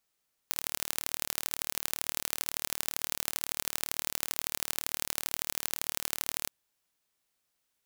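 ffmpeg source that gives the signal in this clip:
-f lavfi -i "aevalsrc='0.794*eq(mod(n,1164),0)*(0.5+0.5*eq(mod(n,3492),0))':d=5.99:s=44100"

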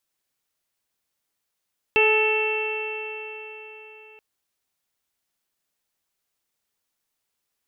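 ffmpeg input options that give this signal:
-f lavfi -i "aevalsrc='0.119*pow(10,-3*t/4.13)*sin(2*PI*431.41*t)+0.0562*pow(10,-3*t/4.13)*sin(2*PI*865.27*t)+0.0251*pow(10,-3*t/4.13)*sin(2*PI*1304.01*t)+0.0237*pow(10,-3*t/4.13)*sin(2*PI*1750.01*t)+0.0376*pow(10,-3*t/4.13)*sin(2*PI*2205.59*t)+0.15*pow(10,-3*t/4.13)*sin(2*PI*2672.98*t)+0.015*pow(10,-3*t/4.13)*sin(2*PI*3154.32*t)':d=2.23:s=44100"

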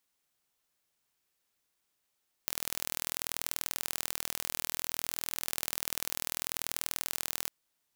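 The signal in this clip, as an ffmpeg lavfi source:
-f lavfi -i "aevalsrc='0.596*eq(mod(n,1086),0)*(0.5+0.5*eq(mod(n,2172),0))':d=5.02:s=44100"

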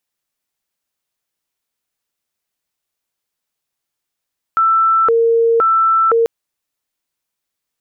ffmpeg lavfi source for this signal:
-f lavfi -i "aevalsrc='0.335*sin(2*PI*(895*t+435/0.97*(0.5-abs(mod(0.97*t,1)-0.5))))':d=1.69:s=44100"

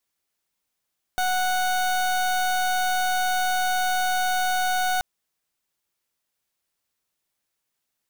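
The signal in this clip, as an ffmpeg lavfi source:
-f lavfi -i "aevalsrc='0.0708*(2*lt(mod(738*t,1),0.29)-1)':d=3.83:s=44100"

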